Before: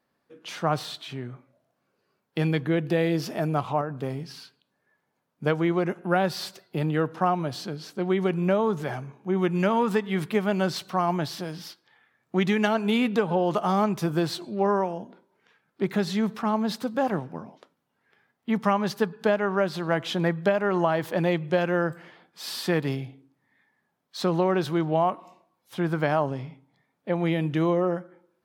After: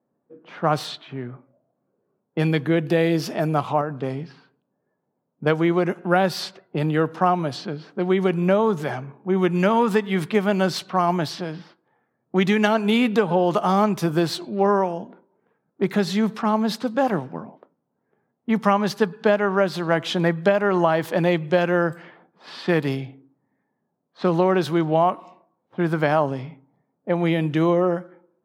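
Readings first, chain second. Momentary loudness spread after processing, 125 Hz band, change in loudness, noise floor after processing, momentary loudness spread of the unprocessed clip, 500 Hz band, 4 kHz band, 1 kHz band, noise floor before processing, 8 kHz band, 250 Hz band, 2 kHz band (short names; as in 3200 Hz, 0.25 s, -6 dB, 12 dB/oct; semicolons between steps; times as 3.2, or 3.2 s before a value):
13 LU, +3.5 dB, +4.5 dB, -76 dBFS, 13 LU, +4.5 dB, +3.5 dB, +4.5 dB, -76 dBFS, +2.5 dB, +4.0 dB, +4.5 dB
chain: HPF 120 Hz; low-pass opened by the level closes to 610 Hz, open at -24 dBFS; gain +4.5 dB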